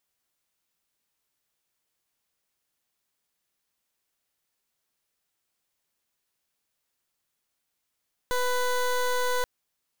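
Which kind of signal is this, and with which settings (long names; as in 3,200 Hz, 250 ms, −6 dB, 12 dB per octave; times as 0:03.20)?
pulse wave 497 Hz, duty 19% −25.5 dBFS 1.13 s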